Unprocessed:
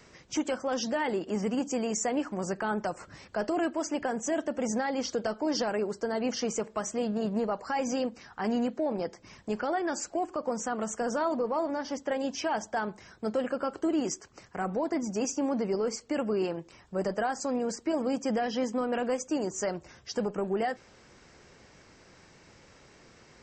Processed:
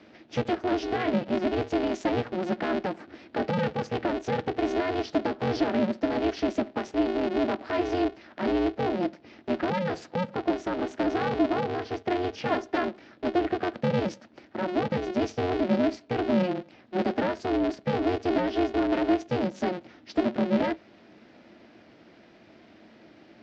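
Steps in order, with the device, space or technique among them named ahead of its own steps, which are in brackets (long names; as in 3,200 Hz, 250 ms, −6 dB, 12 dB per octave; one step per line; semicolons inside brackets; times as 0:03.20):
ring modulator pedal into a guitar cabinet (ring modulator with a square carrier 180 Hz; loudspeaker in its box 100–4,200 Hz, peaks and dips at 220 Hz +10 dB, 320 Hz +10 dB, 630 Hz +5 dB, 1,100 Hz −5 dB)
0:12.47–0:12.88: comb filter 2.9 ms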